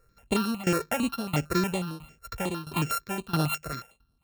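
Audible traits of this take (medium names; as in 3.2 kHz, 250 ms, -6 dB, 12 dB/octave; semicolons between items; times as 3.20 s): a buzz of ramps at a fixed pitch in blocks of 32 samples; tremolo saw down 1.5 Hz, depth 90%; notches that jump at a steady rate 11 Hz 860–7300 Hz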